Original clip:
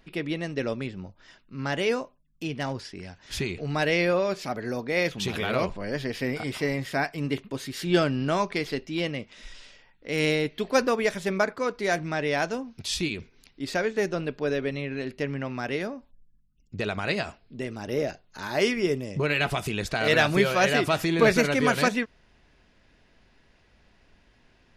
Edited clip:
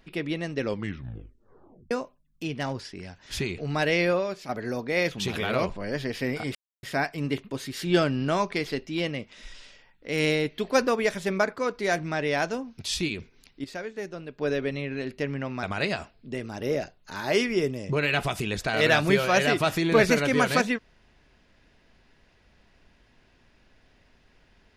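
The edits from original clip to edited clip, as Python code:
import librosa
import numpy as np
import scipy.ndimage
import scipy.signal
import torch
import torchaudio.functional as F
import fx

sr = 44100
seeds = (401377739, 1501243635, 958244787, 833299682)

y = fx.edit(x, sr, fx.tape_stop(start_s=0.61, length_s=1.3),
    fx.fade_out_to(start_s=4.12, length_s=0.37, curve='qua', floor_db=-7.0),
    fx.silence(start_s=6.55, length_s=0.28),
    fx.clip_gain(start_s=13.64, length_s=0.75, db=-9.0),
    fx.cut(start_s=15.63, length_s=1.27), tone=tone)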